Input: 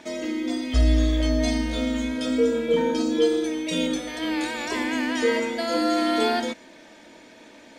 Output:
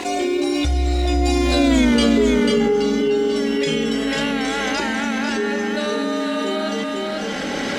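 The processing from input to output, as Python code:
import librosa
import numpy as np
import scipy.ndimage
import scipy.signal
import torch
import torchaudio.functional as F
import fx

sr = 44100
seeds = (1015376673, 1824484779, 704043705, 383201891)

p1 = fx.recorder_agc(x, sr, target_db=-14.0, rise_db_per_s=26.0, max_gain_db=30)
p2 = fx.doppler_pass(p1, sr, speed_mps=43, closest_m=7.2, pass_at_s=1.81)
p3 = p2 + fx.echo_single(p2, sr, ms=494, db=-7.0, dry=0)
p4 = fx.env_flatten(p3, sr, amount_pct=70)
y = p4 * librosa.db_to_amplitude(7.5)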